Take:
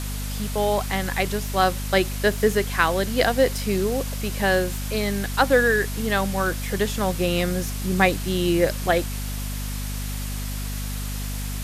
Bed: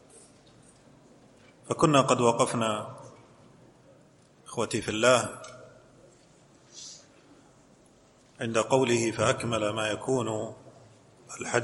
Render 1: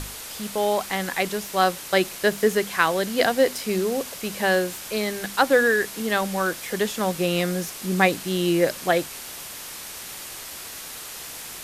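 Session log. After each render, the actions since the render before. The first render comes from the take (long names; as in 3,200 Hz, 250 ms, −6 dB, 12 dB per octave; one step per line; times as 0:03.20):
mains-hum notches 50/100/150/200/250 Hz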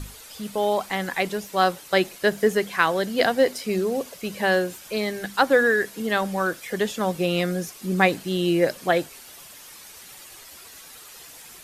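broadband denoise 10 dB, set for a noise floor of −37 dBFS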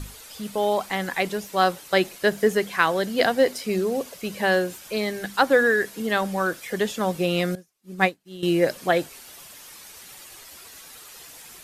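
0:07.55–0:08.43: expander for the loud parts 2.5 to 1, over −37 dBFS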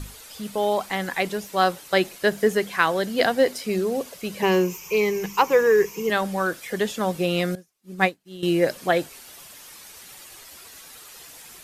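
0:04.42–0:06.10: EQ curve with evenly spaced ripples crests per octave 0.77, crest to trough 16 dB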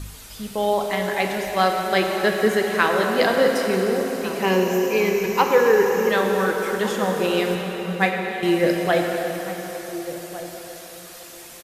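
slap from a distant wall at 250 metres, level −13 dB
dense smooth reverb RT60 4.5 s, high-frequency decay 0.8×, DRR 1 dB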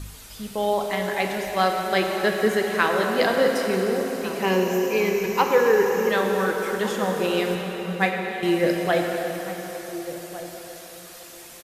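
level −2 dB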